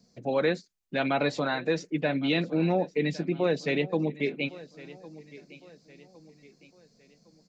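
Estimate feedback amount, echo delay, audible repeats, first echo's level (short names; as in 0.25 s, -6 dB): 41%, 1.109 s, 3, -19.0 dB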